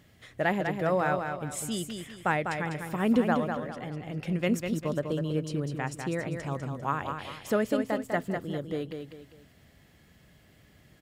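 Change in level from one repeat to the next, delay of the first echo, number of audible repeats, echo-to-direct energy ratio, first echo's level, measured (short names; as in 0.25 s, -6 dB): -9.0 dB, 0.199 s, 3, -5.5 dB, -6.0 dB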